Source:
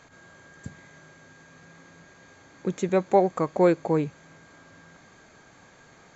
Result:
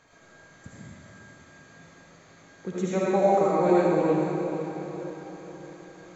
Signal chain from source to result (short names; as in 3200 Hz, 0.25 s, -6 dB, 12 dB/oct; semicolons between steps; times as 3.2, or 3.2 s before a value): diffused feedback echo 0.479 s, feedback 50%, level -7.5 dB; reverb removal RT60 0.61 s; digital reverb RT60 1.7 s, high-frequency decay 1×, pre-delay 35 ms, DRR -7.5 dB; gain -7 dB